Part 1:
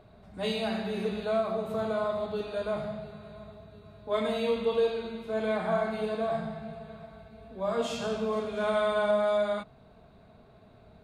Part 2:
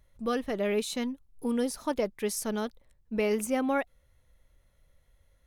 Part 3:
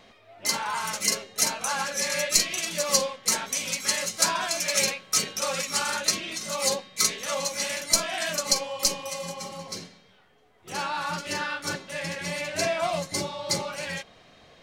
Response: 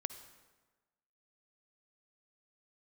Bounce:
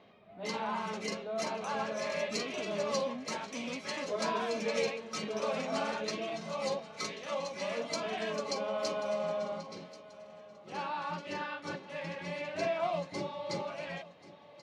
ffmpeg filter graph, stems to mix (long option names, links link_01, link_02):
-filter_complex "[0:a]volume=-8.5dB,asplit=2[link_01][link_02];[link_02]volume=-18dB[link_03];[1:a]asoftclip=type=tanh:threshold=-33dB,adelay=2100,volume=-5dB[link_04];[2:a]bandreject=frequency=1400:width=22,volume=-4.5dB,asplit=2[link_05][link_06];[link_06]volume=-17.5dB[link_07];[link_03][link_07]amix=inputs=2:normalize=0,aecho=0:1:1085|2170|3255|4340|5425:1|0.34|0.116|0.0393|0.0134[link_08];[link_01][link_04][link_05][link_08]amix=inputs=4:normalize=0,highpass=150,lowpass=2600,equalizer=frequency=1700:width=1.7:gain=-5.5"